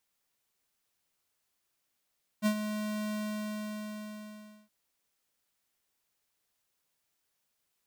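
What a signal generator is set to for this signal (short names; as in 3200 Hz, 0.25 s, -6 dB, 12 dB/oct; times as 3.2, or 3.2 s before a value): ADSR square 212 Hz, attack 41 ms, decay 78 ms, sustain -9.5 dB, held 0.71 s, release 1.56 s -25 dBFS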